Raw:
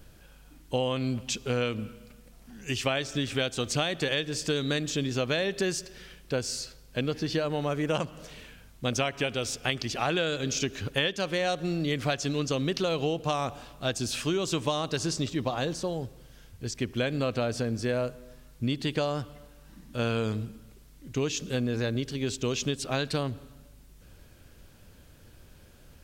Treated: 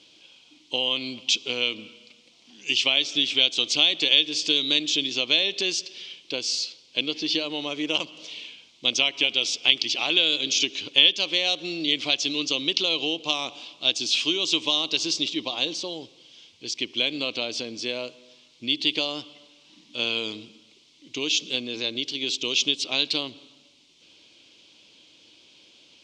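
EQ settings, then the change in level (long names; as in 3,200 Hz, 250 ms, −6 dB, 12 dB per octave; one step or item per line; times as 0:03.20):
loudspeaker in its box 280–6,100 Hz, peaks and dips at 310 Hz +9 dB, 1,000 Hz +6 dB, 2,200 Hz +7 dB
high shelf with overshoot 2,300 Hz +11 dB, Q 3
−4.0 dB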